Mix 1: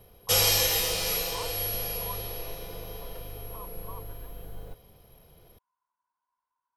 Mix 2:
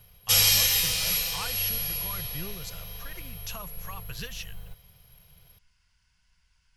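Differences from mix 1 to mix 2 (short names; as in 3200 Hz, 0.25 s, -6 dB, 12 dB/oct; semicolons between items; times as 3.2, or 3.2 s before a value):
speech: remove band-pass 1000 Hz, Q 11; master: add EQ curve 170 Hz 0 dB, 260 Hz -18 dB, 2300 Hz +3 dB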